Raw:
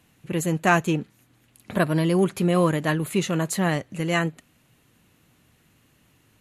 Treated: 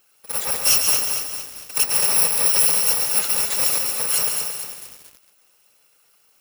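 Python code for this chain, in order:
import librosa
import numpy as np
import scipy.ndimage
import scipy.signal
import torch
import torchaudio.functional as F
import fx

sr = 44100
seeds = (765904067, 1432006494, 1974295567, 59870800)

p1 = fx.bit_reversed(x, sr, seeds[0], block=128)
p2 = scipy.signal.sosfilt(scipy.signal.butter(2, 500.0, 'highpass', fs=sr, output='sos'), p1)
p3 = (np.mod(10.0 ** (9.0 / 20.0) * p2 + 1.0, 2.0) - 1.0) / 10.0 ** (9.0 / 20.0)
p4 = p2 + (p3 * 10.0 ** (-11.0 / 20.0))
p5 = fx.whisperise(p4, sr, seeds[1])
p6 = p5 + fx.echo_feedback(p5, sr, ms=139, feedback_pct=36, wet_db=-6.0, dry=0)
y = fx.echo_crushed(p6, sr, ms=226, feedback_pct=55, bits=6, wet_db=-5.5)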